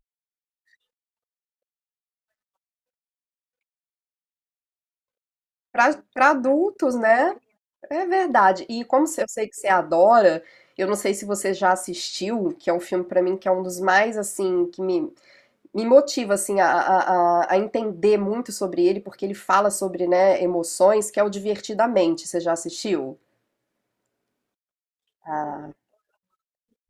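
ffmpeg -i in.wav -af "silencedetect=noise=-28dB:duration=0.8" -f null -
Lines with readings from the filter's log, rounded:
silence_start: 0.00
silence_end: 5.75 | silence_duration: 5.75
silence_start: 23.10
silence_end: 25.29 | silence_duration: 2.19
silence_start: 25.65
silence_end: 26.90 | silence_duration: 1.24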